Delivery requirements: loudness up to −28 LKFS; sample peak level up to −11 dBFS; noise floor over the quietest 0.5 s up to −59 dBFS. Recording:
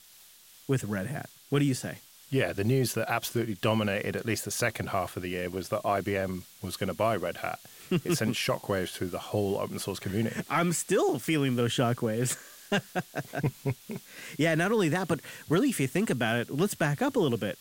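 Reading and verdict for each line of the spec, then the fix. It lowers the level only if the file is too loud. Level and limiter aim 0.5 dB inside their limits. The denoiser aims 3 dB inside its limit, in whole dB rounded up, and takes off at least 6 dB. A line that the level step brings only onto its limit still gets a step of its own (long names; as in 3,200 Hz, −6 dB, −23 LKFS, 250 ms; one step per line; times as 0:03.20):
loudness −29.5 LKFS: in spec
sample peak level −12.5 dBFS: in spec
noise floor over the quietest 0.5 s −55 dBFS: out of spec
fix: broadband denoise 7 dB, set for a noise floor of −55 dBFS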